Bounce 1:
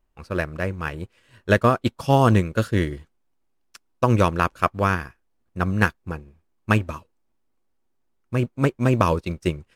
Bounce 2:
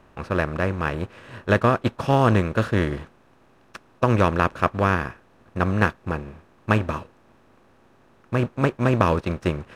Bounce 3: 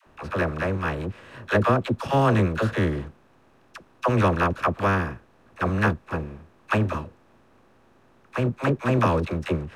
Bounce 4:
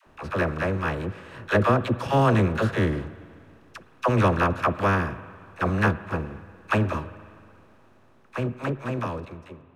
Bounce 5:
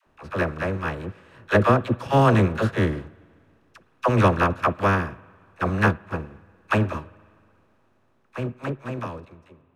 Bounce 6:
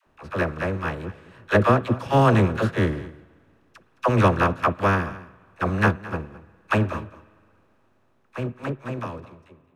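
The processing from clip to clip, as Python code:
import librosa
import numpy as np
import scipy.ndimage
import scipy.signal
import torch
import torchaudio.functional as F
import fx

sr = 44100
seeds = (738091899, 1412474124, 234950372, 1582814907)

y1 = fx.bin_compress(x, sr, power=0.6)
y1 = fx.high_shelf(y1, sr, hz=6900.0, db=-10.0)
y1 = y1 * librosa.db_to_amplitude(-3.0)
y2 = fx.dispersion(y1, sr, late='lows', ms=64.0, hz=540.0)
y2 = y2 * librosa.db_to_amplitude(-1.5)
y3 = fx.fade_out_tail(y2, sr, length_s=1.98)
y3 = fx.rev_spring(y3, sr, rt60_s=2.3, pass_ms=(50, 58), chirp_ms=70, drr_db=15.0)
y4 = fx.upward_expand(y3, sr, threshold_db=-39.0, expansion=1.5)
y4 = y4 * librosa.db_to_amplitude(3.5)
y5 = y4 + 10.0 ** (-18.0 / 20.0) * np.pad(y4, (int(216 * sr / 1000.0), 0))[:len(y4)]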